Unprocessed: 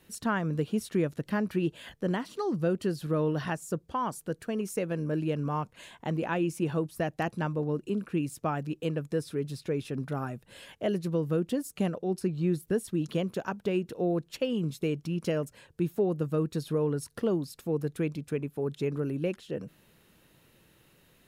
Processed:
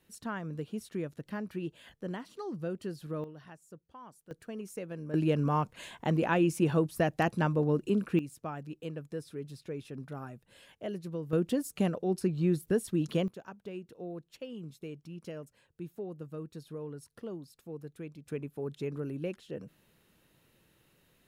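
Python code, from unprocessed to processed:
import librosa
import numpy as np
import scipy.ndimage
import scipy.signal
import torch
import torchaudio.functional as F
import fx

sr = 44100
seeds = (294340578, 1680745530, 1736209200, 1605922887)

y = fx.gain(x, sr, db=fx.steps((0.0, -8.5), (3.24, -19.0), (4.31, -9.0), (5.14, 2.5), (8.19, -8.5), (11.33, 0.0), (13.28, -13.0), (18.26, -5.5)))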